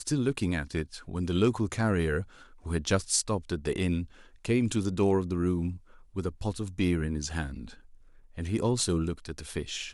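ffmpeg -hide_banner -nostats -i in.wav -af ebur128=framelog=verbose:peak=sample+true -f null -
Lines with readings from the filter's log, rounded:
Integrated loudness:
  I:         -29.9 LUFS
  Threshold: -40.5 LUFS
Loudness range:
  LRA:         3.9 LU
  Threshold: -50.3 LUFS
  LRA low:   -32.9 LUFS
  LRA high:  -29.0 LUFS
Sample peak:
  Peak:       -9.4 dBFS
True peak:
  Peak:       -9.4 dBFS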